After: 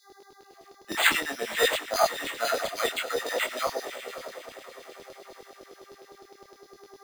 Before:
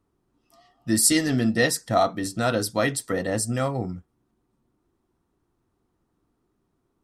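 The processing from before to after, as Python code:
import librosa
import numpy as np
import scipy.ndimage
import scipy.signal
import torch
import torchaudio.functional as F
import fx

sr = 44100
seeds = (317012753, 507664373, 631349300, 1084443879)

p1 = fx.dmg_buzz(x, sr, base_hz=400.0, harmonics=5, level_db=-48.0, tilt_db=-8, odd_only=False)
p2 = scipy.signal.sosfilt(scipy.signal.butter(6, 220.0, 'highpass', fs=sr, output='sos'), p1)
p3 = p2 + fx.echo_diffused(p2, sr, ms=565, feedback_pct=51, wet_db=-10.5, dry=0)
p4 = np.repeat(p3[::8], 8)[:len(p3)]
p5 = fx.filter_lfo_highpass(p4, sr, shape='saw_down', hz=9.8, low_hz=400.0, high_hz=4600.0, q=2.4)
y = fx.detune_double(p5, sr, cents=19)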